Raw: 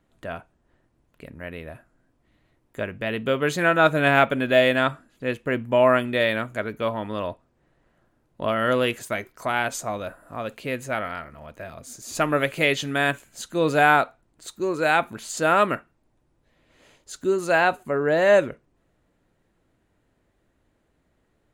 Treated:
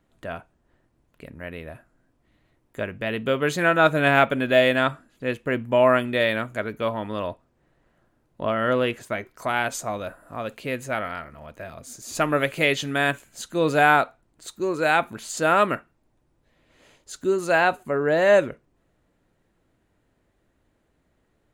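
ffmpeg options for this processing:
-filter_complex "[0:a]asettb=1/sr,asplit=3[s0][s1][s2];[s0]atrim=end=8.424[s3];[s1]atrim=start=8.42:end=9.31,asetpts=PTS-STARTPTS,afade=t=in:d=0.004:c=qsin,afade=t=out:st=0.886:d=0.004:c=qsin,highshelf=f=4300:g=-10[s4];[s2]atrim=start=9.306[s5];[s3][s4]acrossfade=d=0.004:c1=hsin:c2=qsin[s6];[s6][s5]acrossfade=d=0.004:c1=qsin:c2=hsin"

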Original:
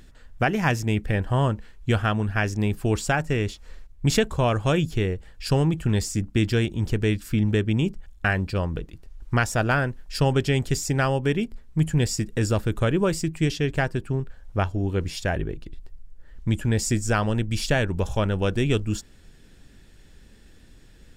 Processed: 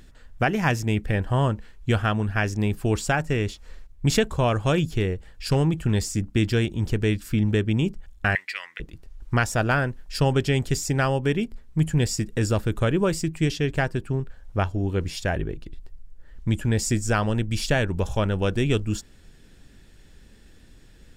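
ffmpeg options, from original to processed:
-filter_complex "[0:a]asettb=1/sr,asplit=3[s0][s1][s2];[s0]atrim=end=4.744[s3];[s1]atrim=start=4.74:end=5.56,asetpts=PTS-STARTPTS,afade=t=in:d=0.004:c=qsin,afade=t=out:st=0.816:d=0.004:c=qsin,asoftclip=type=hard:threshold=0.237[s4];[s2]atrim=start=5.556[s5];[s3][s4]acrossfade=d=0.004:c1=hsin:c2=qsin[s6];[s6][s5]acrossfade=d=0.004:c1=qsin:c2=hsin,asettb=1/sr,asplit=3[s7][s8][s9];[s7]atrim=end=8.354[s10];[s8]atrim=start=8.35:end=8.8,asetpts=PTS-STARTPTS,afade=t=in:d=0.004:c=qsin,afade=t=out:st=0.446:d=0.004:c=qsin,highpass=f=2000:t=q:w=13[s11];[s9]atrim=start=8.796[s12];[s10][s11]acrossfade=d=0.004:c1=hsin:c2=qsin[s13];[s13][s12]acrossfade=d=0.004:c1=qsin:c2=hsin"

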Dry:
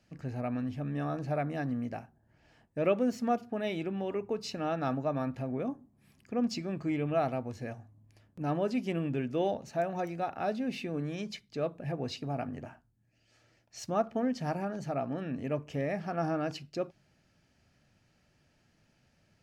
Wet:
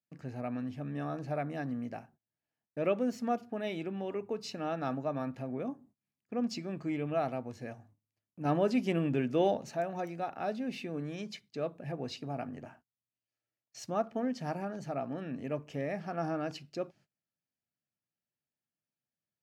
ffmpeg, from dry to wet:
-filter_complex "[0:a]asettb=1/sr,asplit=3[s0][s1][s2];[s0]atrim=end=8.454[s3];[s1]atrim=start=8.45:end=9.75,asetpts=PTS-STARTPTS,afade=t=in:d=0.004:c=qsin,afade=t=out:st=1.296:d=0.004:c=qsin,acontrast=26[s4];[s2]atrim=start=9.746[s5];[s3][s4]acrossfade=d=0.004:c1=hsin:c2=qsin[s6];[s6][s5]acrossfade=d=0.004:c1=qsin:c2=hsin,agate=range=0.0501:threshold=0.00158:ratio=16:detection=peak,highpass=120,volume=0.75"

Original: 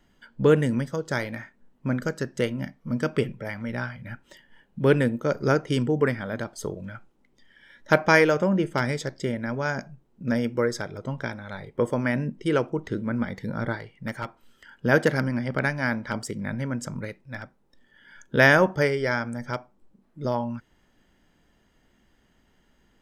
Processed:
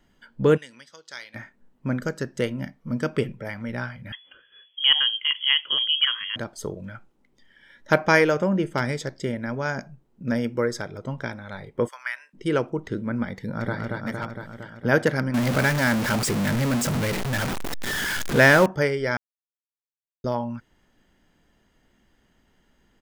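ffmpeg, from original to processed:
-filter_complex "[0:a]asplit=3[s0][s1][s2];[s0]afade=t=out:st=0.56:d=0.02[s3];[s1]bandpass=f=4100:t=q:w=1.3,afade=t=in:st=0.56:d=0.02,afade=t=out:st=1.34:d=0.02[s4];[s2]afade=t=in:st=1.34:d=0.02[s5];[s3][s4][s5]amix=inputs=3:normalize=0,asettb=1/sr,asplit=3[s6][s7][s8];[s6]atrim=end=4.124[s9];[s7]atrim=start=4.12:end=6.36,asetpts=PTS-STARTPTS,afade=t=in:d=0.004:c=qsin,afade=t=out:st=2.236:d=0.004:c=qsin,lowpass=f=2900:t=q:w=0.5098,lowpass=f=2900:t=q:w=0.6013,lowpass=f=2900:t=q:w=0.9,lowpass=f=2900:t=q:w=2.563,afreqshift=-3400[s10];[s8]atrim=start=6.356[s11];[s9][s10]acrossfade=d=0.004:c1=hsin:c2=qsin[s12];[s12][s11]acrossfade=d=0.004:c1=qsin:c2=hsin,asplit=3[s13][s14][s15];[s13]afade=t=out:st=11.87:d=0.02[s16];[s14]highpass=f=1200:w=0.5412,highpass=f=1200:w=1.3066,afade=t=in:st=11.87:d=0.02,afade=t=out:st=12.33:d=0.02[s17];[s15]afade=t=in:st=12.33:d=0.02[s18];[s16][s17][s18]amix=inputs=3:normalize=0,asplit=2[s19][s20];[s20]afade=t=in:st=13.33:d=0.01,afade=t=out:st=13.77:d=0.01,aecho=0:1:230|460|690|920|1150|1380|1610|1840|2070|2300|2530|2760:0.749894|0.524926|0.367448|0.257214|0.18005|0.126035|0.0882243|0.061757|0.0432299|0.0302609|0.0211827|0.0148279[s21];[s19][s21]amix=inputs=2:normalize=0,asettb=1/sr,asplit=3[s22][s23][s24];[s22]atrim=end=15.344[s25];[s23]atrim=start=15.34:end=18.66,asetpts=PTS-STARTPTS,afade=t=in:d=0.004:c=qsin,afade=t=out:st=3.316:d=0.004:c=qsin,aeval=exprs='val(0)+0.5*0.0891*sgn(val(0))':c=same[s26];[s24]atrim=start=18.656[s27];[s25][s26]acrossfade=d=0.004:c1=hsin:c2=qsin[s28];[s28][s27]acrossfade=d=0.004:c1=qsin:c2=hsin,asplit=3[s29][s30][s31];[s29]atrim=end=19.17,asetpts=PTS-STARTPTS,afade=t=out:st=19.166:d=0.004:c=hsin[s32];[s30]atrim=start=19.17:end=20.24,asetpts=PTS-STARTPTS,volume=0[s33];[s31]atrim=start=20.24,asetpts=PTS-STARTPTS,afade=t=in:d=0.004:c=hsin[s34];[s32][s33][s34]concat=n=3:v=0:a=1"

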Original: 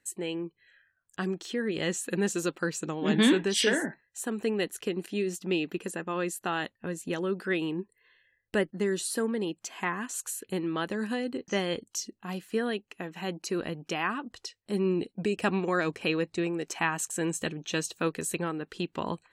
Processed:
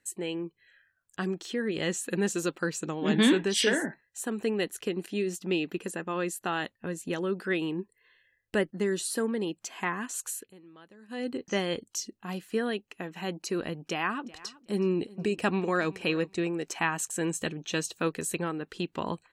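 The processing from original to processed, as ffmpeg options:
-filter_complex "[0:a]asplit=3[s0][s1][s2];[s0]afade=t=out:st=14.23:d=0.02[s3];[s1]aecho=1:1:372|744:0.0944|0.017,afade=t=in:st=14.23:d=0.02,afade=t=out:st=16.41:d=0.02[s4];[s2]afade=t=in:st=16.41:d=0.02[s5];[s3][s4][s5]amix=inputs=3:normalize=0,asplit=3[s6][s7][s8];[s6]atrim=end=10.53,asetpts=PTS-STARTPTS,afade=t=out:st=10.37:d=0.16:silence=0.0841395[s9];[s7]atrim=start=10.53:end=11.08,asetpts=PTS-STARTPTS,volume=0.0841[s10];[s8]atrim=start=11.08,asetpts=PTS-STARTPTS,afade=t=in:d=0.16:silence=0.0841395[s11];[s9][s10][s11]concat=n=3:v=0:a=1"

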